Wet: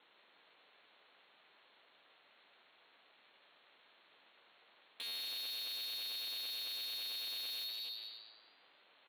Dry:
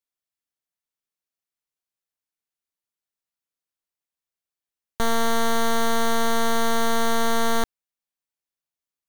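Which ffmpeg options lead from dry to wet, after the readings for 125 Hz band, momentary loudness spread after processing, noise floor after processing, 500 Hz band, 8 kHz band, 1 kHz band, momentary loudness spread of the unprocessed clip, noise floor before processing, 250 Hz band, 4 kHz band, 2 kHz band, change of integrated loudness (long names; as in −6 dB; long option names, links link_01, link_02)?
below −40 dB, 7 LU, −69 dBFS, −37.5 dB, −21.5 dB, −36.5 dB, 3 LU, below −85 dBFS, below −40 dB, −6.0 dB, −22.5 dB, −16.0 dB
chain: -filter_complex "[0:a]aeval=exprs='val(0)+0.5*0.00631*sgn(val(0))':channel_layout=same,lowpass=frequency=3400:width_type=q:width=0.5098,lowpass=frequency=3400:width_type=q:width=0.6013,lowpass=frequency=3400:width_type=q:width=0.9,lowpass=frequency=3400:width_type=q:width=2.563,afreqshift=-4000,asplit=2[link_01][link_02];[link_02]aecho=0:1:248|496:0.2|0.0379[link_03];[link_01][link_03]amix=inputs=2:normalize=0,acompressor=threshold=-31dB:ratio=2,asplit=2[link_04][link_05];[link_05]adelay=14,volume=-12dB[link_06];[link_04][link_06]amix=inputs=2:normalize=0,asplit=2[link_07][link_08];[link_08]asplit=4[link_09][link_10][link_11][link_12];[link_09]adelay=152,afreqshift=110,volume=-7dB[link_13];[link_10]adelay=304,afreqshift=220,volume=-15.6dB[link_14];[link_11]adelay=456,afreqshift=330,volume=-24.3dB[link_15];[link_12]adelay=608,afreqshift=440,volume=-32.9dB[link_16];[link_13][link_14][link_15][link_16]amix=inputs=4:normalize=0[link_17];[link_07][link_17]amix=inputs=2:normalize=0,asoftclip=type=tanh:threshold=-31.5dB,aeval=exprs='val(0)*sin(2*PI*300*n/s)':channel_layout=same,highpass=230,equalizer=frequency=540:width=0.85:gain=4.5,volume=-6.5dB"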